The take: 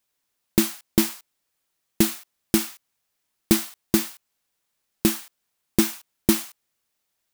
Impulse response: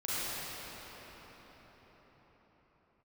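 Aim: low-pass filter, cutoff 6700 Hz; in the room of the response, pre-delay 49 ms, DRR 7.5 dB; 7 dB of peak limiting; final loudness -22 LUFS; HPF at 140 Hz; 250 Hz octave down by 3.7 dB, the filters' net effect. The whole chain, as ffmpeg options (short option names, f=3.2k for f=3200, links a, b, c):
-filter_complex "[0:a]highpass=140,lowpass=6.7k,equalizer=f=250:t=o:g=-4.5,alimiter=limit=-14dB:level=0:latency=1,asplit=2[a][b];[1:a]atrim=start_sample=2205,adelay=49[c];[b][c]afir=irnorm=-1:irlink=0,volume=-15.5dB[d];[a][d]amix=inputs=2:normalize=0,volume=11dB"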